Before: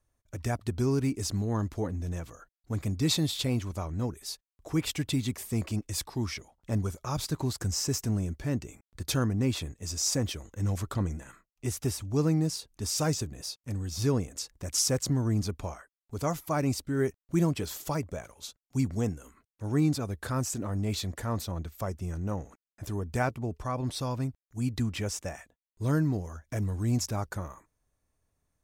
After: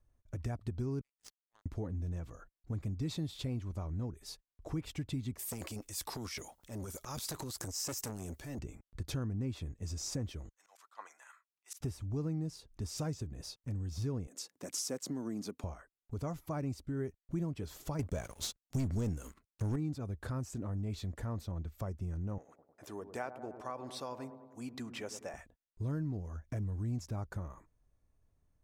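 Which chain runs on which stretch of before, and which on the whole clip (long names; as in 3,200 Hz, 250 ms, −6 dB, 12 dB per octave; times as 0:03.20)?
0:01.01–0:01.66: high-pass filter 970 Hz 24 dB per octave + power curve on the samples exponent 3
0:05.39–0:08.59: RIAA equalisation recording + transient designer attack −9 dB, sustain +10 dB + saturating transformer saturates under 2,800 Hz
0:10.49–0:11.81: high-pass filter 910 Hz 24 dB per octave + volume swells 118 ms + multiband upward and downward expander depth 70%
0:14.27–0:15.64: high-pass filter 210 Hz 24 dB per octave + high-shelf EQ 4,900 Hz +7.5 dB
0:17.99–0:19.76: high-shelf EQ 3,000 Hz +10.5 dB + leveller curve on the samples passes 3
0:22.38–0:25.34: high-pass filter 460 Hz + delay with a low-pass on its return 102 ms, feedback 61%, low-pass 1,000 Hz, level −11 dB
whole clip: spectral tilt −2 dB per octave; downward compressor 2.5 to 1, threshold −35 dBFS; level −3.5 dB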